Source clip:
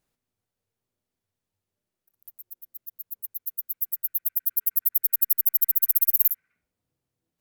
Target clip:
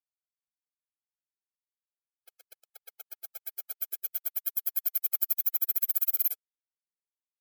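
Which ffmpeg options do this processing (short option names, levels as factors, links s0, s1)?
-af "aeval=exprs='val(0)*gte(abs(val(0)),0.0447)':c=same,afftfilt=real='re*eq(mod(floor(b*sr/1024/430),2),1)':imag='im*eq(mod(floor(b*sr/1024/430),2),1)':win_size=1024:overlap=0.75,volume=0.708"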